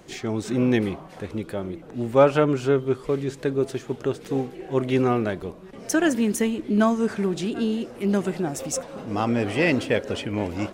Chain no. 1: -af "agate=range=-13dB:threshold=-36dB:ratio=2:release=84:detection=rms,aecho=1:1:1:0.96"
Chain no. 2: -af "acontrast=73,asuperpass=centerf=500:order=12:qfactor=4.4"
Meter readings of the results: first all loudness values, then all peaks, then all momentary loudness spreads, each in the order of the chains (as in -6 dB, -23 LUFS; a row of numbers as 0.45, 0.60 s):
-23.0, -27.5 LUFS; -6.5, -6.0 dBFS; 10, 15 LU